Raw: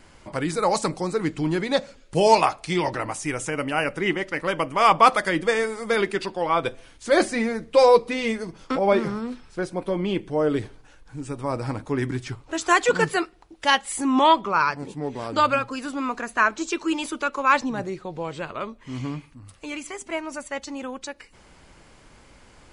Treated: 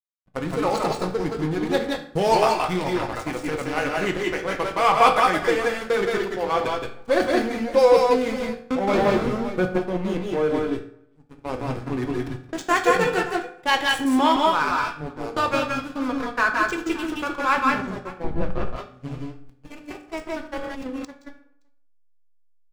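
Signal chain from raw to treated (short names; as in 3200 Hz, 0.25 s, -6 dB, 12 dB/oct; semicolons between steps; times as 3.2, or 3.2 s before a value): in parallel at 0 dB: compressor 12:1, threshold -32 dBFS, peak gain reduction 22.5 dB; on the sum: backlash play -19.5 dBFS; tapped delay 0.171/0.174/0.188/0.571 s -4/-6.5/-7/-18 dB; 8.93–9.78 sample leveller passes 2; 18.24–18.76 RIAA curve playback; gate -28 dBFS, range -20 dB; on a send at -6 dB: bell 3200 Hz +6 dB 2.1 oct + reverb RT60 0.60 s, pre-delay 3 ms; 20.53–21.05 on the sum: sustainer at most 28 dB/s; gain -3.5 dB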